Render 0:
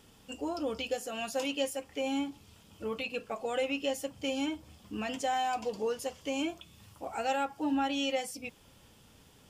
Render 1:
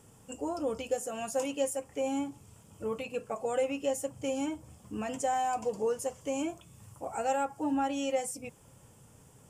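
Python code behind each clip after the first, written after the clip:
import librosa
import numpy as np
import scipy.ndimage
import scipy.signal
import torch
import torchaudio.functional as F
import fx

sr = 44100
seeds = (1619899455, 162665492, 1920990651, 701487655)

y = fx.graphic_eq(x, sr, hz=(125, 500, 1000, 4000, 8000), db=(11, 5, 4, -11, 12))
y = y * librosa.db_to_amplitude(-3.5)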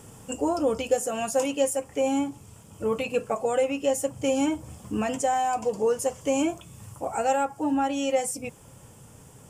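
y = fx.rider(x, sr, range_db=3, speed_s=0.5)
y = y * librosa.db_to_amplitude(7.5)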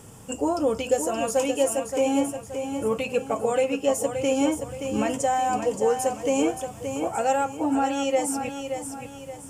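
y = fx.echo_feedback(x, sr, ms=574, feedback_pct=40, wet_db=-7.5)
y = y * librosa.db_to_amplitude(1.0)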